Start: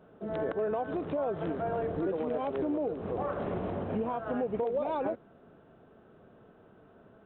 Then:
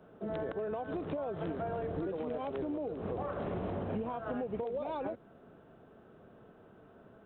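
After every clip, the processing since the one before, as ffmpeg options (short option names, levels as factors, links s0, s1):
-filter_complex "[0:a]acrossover=split=140|3000[s0][s1][s2];[s1]acompressor=threshold=0.02:ratio=6[s3];[s0][s3][s2]amix=inputs=3:normalize=0"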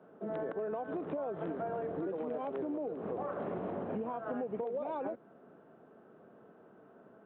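-filter_complex "[0:a]acrossover=split=150 2200:gain=0.0794 1 0.224[s0][s1][s2];[s0][s1][s2]amix=inputs=3:normalize=0"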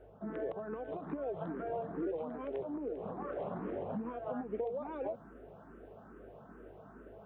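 -filter_complex "[0:a]areverse,acompressor=mode=upward:threshold=0.00631:ratio=2.5,areverse,aeval=exprs='val(0)+0.00112*(sin(2*PI*50*n/s)+sin(2*PI*2*50*n/s)/2+sin(2*PI*3*50*n/s)/3+sin(2*PI*4*50*n/s)/4+sin(2*PI*5*50*n/s)/5)':c=same,asplit=2[s0][s1];[s1]afreqshift=2.4[s2];[s0][s2]amix=inputs=2:normalize=1,volume=1.19"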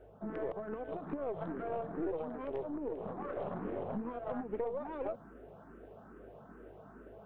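-af "aeval=exprs='0.0473*(cos(1*acos(clip(val(0)/0.0473,-1,1)))-cos(1*PI/2))+0.00473*(cos(4*acos(clip(val(0)/0.0473,-1,1)))-cos(4*PI/2))':c=same"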